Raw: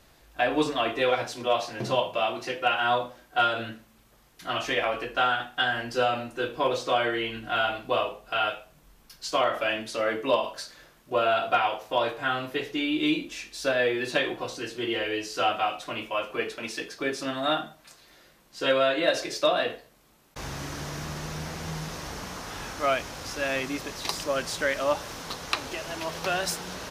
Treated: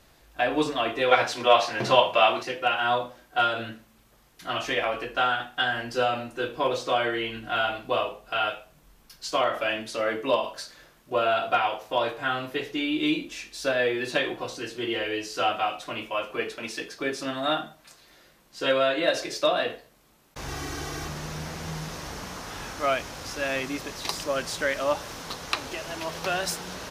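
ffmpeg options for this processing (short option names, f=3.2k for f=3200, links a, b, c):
-filter_complex "[0:a]asettb=1/sr,asplit=3[a][b][c];[a]atrim=end=1.114[d];[b]atrim=start=1.11:end=2.43,asetpts=PTS-STARTPTS,afade=t=in:d=0.004:c=qsin,afade=t=out:st=1.316:d=0.004:c=qsin,equalizer=f=1.7k:w=0.33:g=9.5[e];[c]atrim=start=2.426[f];[d][e]acrossfade=d=0.004:c1=hsin:c2=qsin[g];[g][f]acrossfade=d=0.004:c1=qsin:c2=hsin,asettb=1/sr,asplit=3[h][i][j];[h]atrim=end=20.484[k];[i]atrim=start=20.48:end=21.08,asetpts=PTS-STARTPTS,afade=t=in:d=0.004:c=qsin,afade=t=out:st=0.596:d=0.004:c=qsin,aecho=1:1:2.6:0.86,atrim=end_sample=26460[l];[j]atrim=start=21.076[m];[k][l]acrossfade=d=0.004:c1=hsin:c2=qsin[n];[n][m]acrossfade=d=0.004:c1=qsin:c2=hsin"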